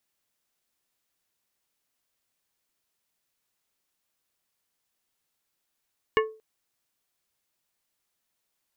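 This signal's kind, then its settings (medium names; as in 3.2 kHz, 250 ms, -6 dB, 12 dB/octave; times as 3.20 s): glass hit plate, length 0.23 s, lowest mode 438 Hz, decay 0.35 s, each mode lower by 2.5 dB, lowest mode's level -17 dB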